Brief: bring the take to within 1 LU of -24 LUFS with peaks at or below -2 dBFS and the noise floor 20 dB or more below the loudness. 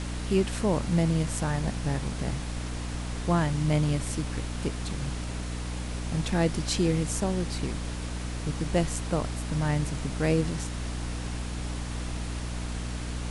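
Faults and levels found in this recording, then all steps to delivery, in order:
hum 60 Hz; harmonics up to 300 Hz; hum level -31 dBFS; noise floor -34 dBFS; noise floor target -50 dBFS; loudness -30.0 LUFS; peak -10.5 dBFS; loudness target -24.0 LUFS
-> notches 60/120/180/240/300 Hz; noise print and reduce 16 dB; gain +6 dB

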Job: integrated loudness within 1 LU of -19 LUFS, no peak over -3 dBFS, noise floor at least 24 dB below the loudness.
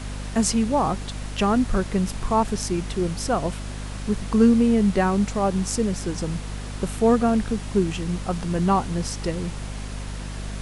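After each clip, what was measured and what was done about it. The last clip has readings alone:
hum 50 Hz; harmonics up to 250 Hz; hum level -30 dBFS; noise floor -33 dBFS; noise floor target -48 dBFS; loudness -23.5 LUFS; peak -6.0 dBFS; loudness target -19.0 LUFS
-> notches 50/100/150/200/250 Hz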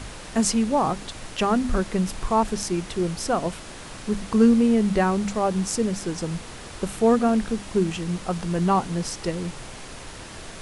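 hum none; noise floor -40 dBFS; noise floor target -48 dBFS
-> noise print and reduce 8 dB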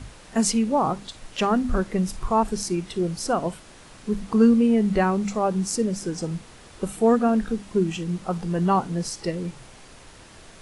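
noise floor -47 dBFS; noise floor target -48 dBFS
-> noise print and reduce 6 dB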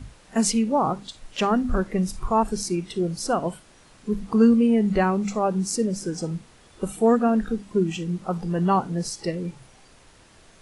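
noise floor -53 dBFS; loudness -24.0 LUFS; peak -7.0 dBFS; loudness target -19.0 LUFS
-> gain +5 dB; limiter -3 dBFS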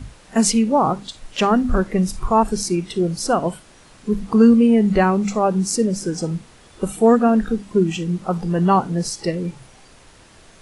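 loudness -19.0 LUFS; peak -3.0 dBFS; noise floor -48 dBFS

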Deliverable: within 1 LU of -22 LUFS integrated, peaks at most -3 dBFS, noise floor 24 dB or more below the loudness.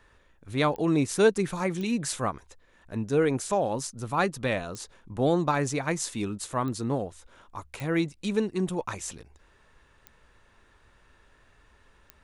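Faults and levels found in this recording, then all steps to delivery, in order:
clicks 7; loudness -28.0 LUFS; peak -10.0 dBFS; loudness target -22.0 LUFS
-> de-click; gain +6 dB

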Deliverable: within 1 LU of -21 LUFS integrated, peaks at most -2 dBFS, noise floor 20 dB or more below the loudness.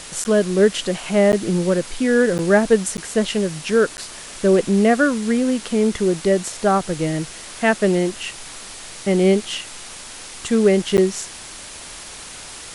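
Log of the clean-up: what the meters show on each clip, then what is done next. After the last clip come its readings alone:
dropouts 6; longest dropout 9.9 ms; noise floor -37 dBFS; noise floor target -39 dBFS; loudness -19.0 LUFS; peak -4.0 dBFS; loudness target -21.0 LUFS
-> interpolate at 0.24/1.32/2.38/2.97/3.97/10.97, 9.9 ms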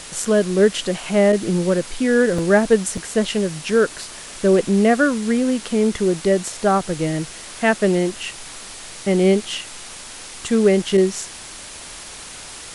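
dropouts 0; noise floor -37 dBFS; noise floor target -39 dBFS
-> denoiser 6 dB, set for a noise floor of -37 dBFS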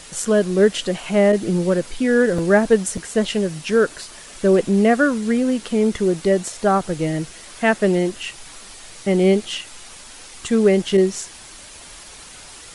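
noise floor -41 dBFS; loudness -19.0 LUFS; peak -4.5 dBFS; loudness target -21.0 LUFS
-> gain -2 dB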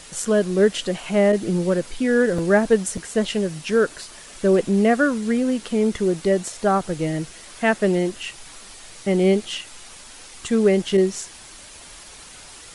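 loudness -21.0 LUFS; peak -6.5 dBFS; noise floor -43 dBFS

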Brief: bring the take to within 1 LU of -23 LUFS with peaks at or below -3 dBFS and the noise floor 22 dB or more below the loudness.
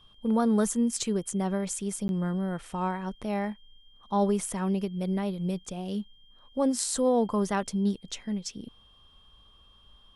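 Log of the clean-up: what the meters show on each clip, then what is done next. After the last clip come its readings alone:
dropouts 1; longest dropout 11 ms; steady tone 3200 Hz; tone level -58 dBFS; loudness -29.0 LUFS; peak -11.0 dBFS; loudness target -23.0 LUFS
-> interpolate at 2.08, 11 ms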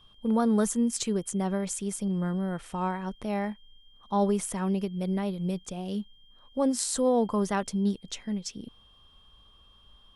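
dropouts 0; steady tone 3200 Hz; tone level -58 dBFS
-> notch 3200 Hz, Q 30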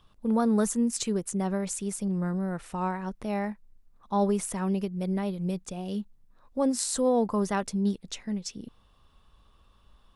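steady tone none; loudness -29.0 LUFS; peak -11.0 dBFS; loudness target -23.0 LUFS
-> gain +6 dB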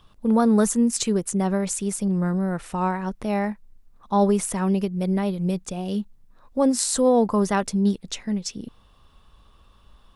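loudness -23.0 LUFS; peak -5.0 dBFS; noise floor -55 dBFS

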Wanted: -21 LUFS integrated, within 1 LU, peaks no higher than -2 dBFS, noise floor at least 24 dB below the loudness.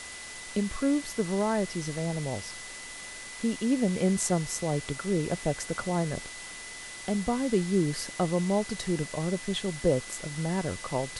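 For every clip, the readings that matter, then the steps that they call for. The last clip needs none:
steady tone 2000 Hz; tone level -44 dBFS; noise floor -42 dBFS; noise floor target -54 dBFS; loudness -30.0 LUFS; peak -13.0 dBFS; loudness target -21.0 LUFS
-> notch 2000 Hz, Q 30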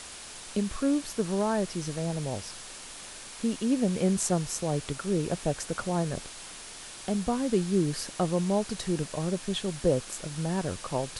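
steady tone none; noise floor -44 dBFS; noise floor target -54 dBFS
-> denoiser 10 dB, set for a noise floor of -44 dBFS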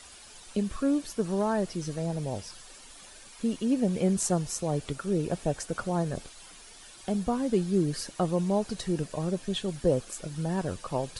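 noise floor -50 dBFS; noise floor target -54 dBFS
-> denoiser 6 dB, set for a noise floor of -50 dBFS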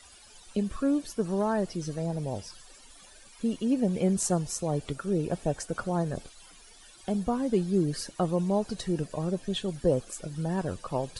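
noise floor -53 dBFS; noise floor target -54 dBFS
-> denoiser 6 dB, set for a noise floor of -53 dBFS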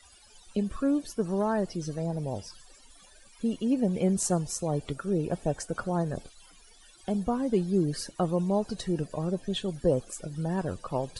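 noise floor -56 dBFS; loudness -30.0 LUFS; peak -13.5 dBFS; loudness target -21.0 LUFS
-> gain +9 dB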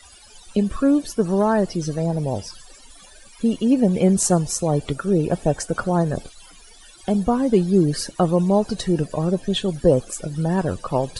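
loudness -21.0 LUFS; peak -4.5 dBFS; noise floor -47 dBFS

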